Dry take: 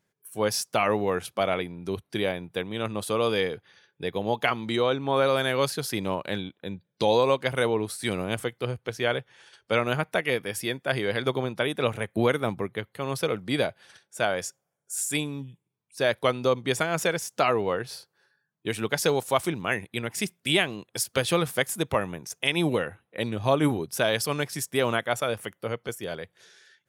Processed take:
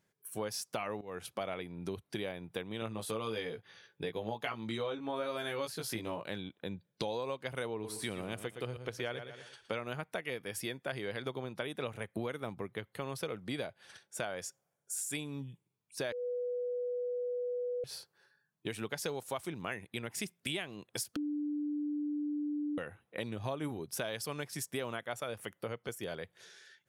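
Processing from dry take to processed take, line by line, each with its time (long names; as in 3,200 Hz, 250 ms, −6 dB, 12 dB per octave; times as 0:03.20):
0:01.01–0:01.49: fade in, from −16.5 dB
0:02.80–0:06.29: double-tracking delay 18 ms −3 dB
0:07.72–0:09.74: repeating echo 116 ms, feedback 29%, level −11.5 dB
0:16.12–0:17.84: beep over 491 Hz −23 dBFS
0:21.16–0:22.78: beep over 295 Hz −21 dBFS
whole clip: downward compressor 4 to 1, threshold −35 dBFS; level −1.5 dB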